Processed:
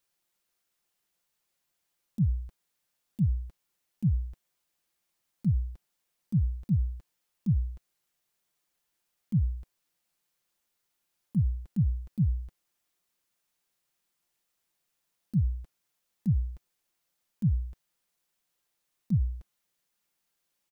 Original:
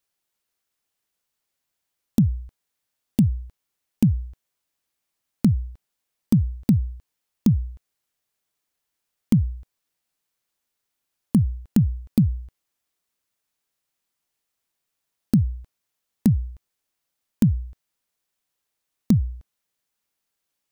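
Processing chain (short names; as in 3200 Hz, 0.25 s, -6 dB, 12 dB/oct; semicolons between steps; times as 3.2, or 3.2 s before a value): auto swell 0.107 s; comb 5.7 ms, depth 35%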